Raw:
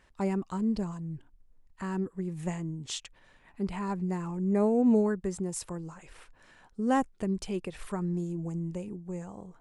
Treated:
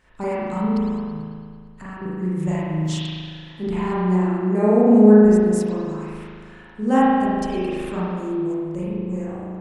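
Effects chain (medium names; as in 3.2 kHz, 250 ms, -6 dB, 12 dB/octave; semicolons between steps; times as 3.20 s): 0.78–2.02 s: compression, threshold -40 dBFS, peak gain reduction 12 dB; 2.53–3.04 s: small samples zeroed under -56.5 dBFS; spring tank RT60 2 s, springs 38 ms, chirp 75 ms, DRR -9 dB; trim +1.5 dB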